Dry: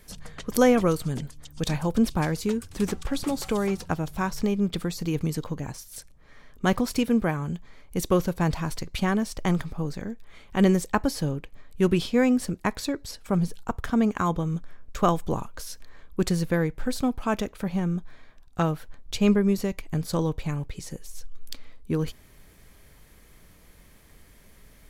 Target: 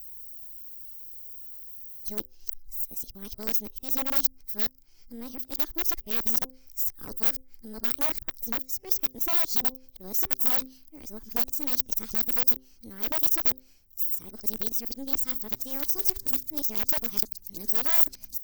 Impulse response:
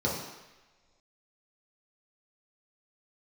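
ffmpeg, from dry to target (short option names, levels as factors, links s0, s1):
-af "areverse,bandreject=f=95.99:t=h:w=4,bandreject=f=191.98:t=h:w=4,bandreject=f=287.97:t=h:w=4,bandreject=f=383.96:t=h:w=4,aeval=exprs='0.562*(cos(1*acos(clip(val(0)/0.562,-1,1)))-cos(1*PI/2))+0.158*(cos(4*acos(clip(val(0)/0.562,-1,1)))-cos(4*PI/2))+0.0224*(cos(6*acos(clip(val(0)/0.562,-1,1)))-cos(6*PI/2))+0.0126*(cos(7*acos(clip(val(0)/0.562,-1,1)))-cos(7*PI/2))+0.0282*(cos(8*acos(clip(val(0)/0.562,-1,1)))-cos(8*PI/2))':c=same,equalizer=f=125:t=o:w=1:g=-7,equalizer=f=500:t=o:w=1:g=-8,equalizer=f=1000:t=o:w=1:g=-7,equalizer=f=2000:t=o:w=1:g=-7,equalizer=f=4000:t=o:w=1:g=10,aeval=exprs='(mod(6.68*val(0)+1,2)-1)/6.68':c=same,aemphasis=mode=production:type=50kf,asoftclip=type=tanh:threshold=0.188,aexciter=amount=14.1:drive=5.6:freq=11000,asetrate=59535,aresample=44100,volume=0.355"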